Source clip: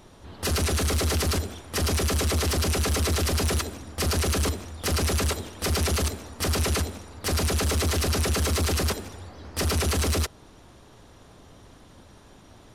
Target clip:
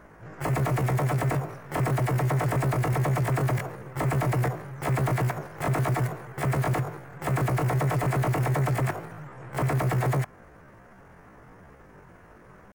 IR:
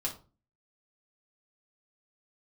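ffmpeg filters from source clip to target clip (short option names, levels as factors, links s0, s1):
-af "asetrate=74167,aresample=44100,atempo=0.594604,highshelf=f=2500:t=q:w=1.5:g=-12.5"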